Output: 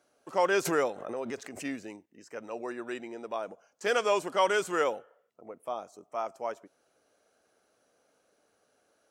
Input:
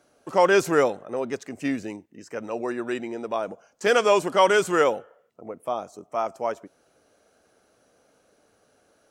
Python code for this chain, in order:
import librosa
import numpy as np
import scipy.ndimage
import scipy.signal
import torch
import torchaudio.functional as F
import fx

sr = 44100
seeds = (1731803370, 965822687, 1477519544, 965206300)

y = fx.low_shelf(x, sr, hz=210.0, db=-9.0)
y = fx.pre_swell(y, sr, db_per_s=60.0, at=(0.65, 1.65))
y = y * 10.0 ** (-6.5 / 20.0)